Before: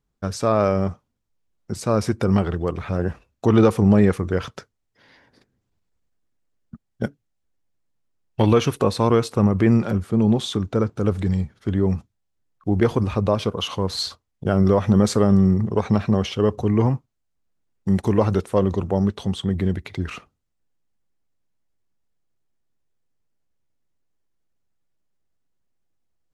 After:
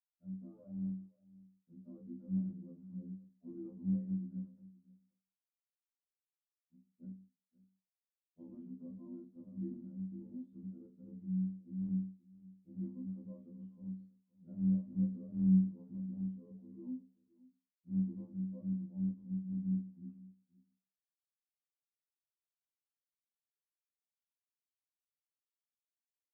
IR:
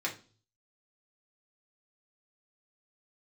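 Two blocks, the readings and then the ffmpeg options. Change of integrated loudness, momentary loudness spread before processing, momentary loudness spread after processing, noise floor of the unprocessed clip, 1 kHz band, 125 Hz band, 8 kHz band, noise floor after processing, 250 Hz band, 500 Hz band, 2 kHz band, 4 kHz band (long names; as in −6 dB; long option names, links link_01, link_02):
−19.0 dB, 13 LU, 18 LU, −75 dBFS, below −40 dB, −19.5 dB, below −40 dB, below −85 dBFS, −16.5 dB, −38.5 dB, below −40 dB, below −40 dB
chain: -filter_complex "[0:a]acrusher=bits=5:mix=0:aa=0.5,asuperpass=centerf=200:order=4:qfactor=2.8,asplit=2[link_01][link_02];[link_02]adelay=31,volume=-11.5dB[link_03];[link_01][link_03]amix=inputs=2:normalize=0,aecho=1:1:524:0.0891[link_04];[1:a]atrim=start_sample=2205,asetrate=79380,aresample=44100[link_05];[link_04][link_05]afir=irnorm=-1:irlink=0,afftfilt=real='re*2*eq(mod(b,4),0)':imag='im*2*eq(mod(b,4),0)':win_size=2048:overlap=0.75,volume=-6dB"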